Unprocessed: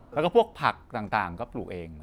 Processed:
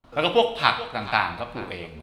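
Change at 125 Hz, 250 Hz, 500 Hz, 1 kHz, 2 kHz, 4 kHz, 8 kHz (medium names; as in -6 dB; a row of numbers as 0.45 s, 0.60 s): 0.0 dB, 0.0 dB, +1.0 dB, +3.5 dB, +7.0 dB, +13.0 dB, no reading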